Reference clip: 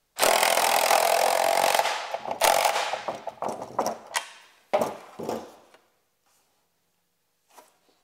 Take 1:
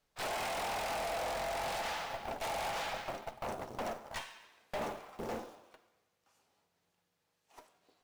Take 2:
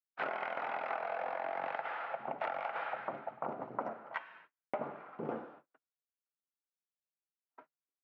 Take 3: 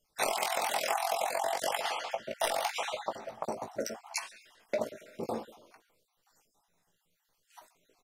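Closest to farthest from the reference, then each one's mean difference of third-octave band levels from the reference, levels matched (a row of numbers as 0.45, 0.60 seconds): 3, 1, 2; 5.0, 7.5, 10.0 decibels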